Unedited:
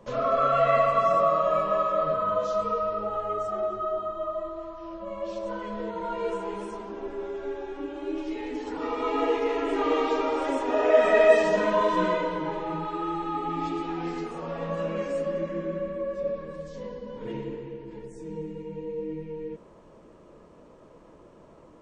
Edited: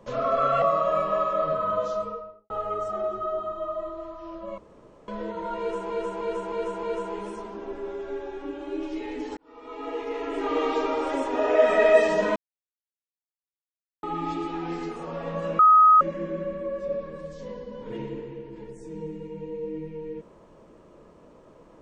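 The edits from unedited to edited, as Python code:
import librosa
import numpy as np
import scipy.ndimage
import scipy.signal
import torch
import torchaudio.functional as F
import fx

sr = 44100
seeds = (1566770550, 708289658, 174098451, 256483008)

y = fx.studio_fade_out(x, sr, start_s=2.37, length_s=0.72)
y = fx.edit(y, sr, fx.cut(start_s=0.62, length_s=0.59),
    fx.room_tone_fill(start_s=5.17, length_s=0.5),
    fx.repeat(start_s=6.18, length_s=0.31, count=5),
    fx.fade_in_span(start_s=8.72, length_s=1.36),
    fx.silence(start_s=11.71, length_s=1.67),
    fx.bleep(start_s=14.94, length_s=0.42, hz=1260.0, db=-11.5), tone=tone)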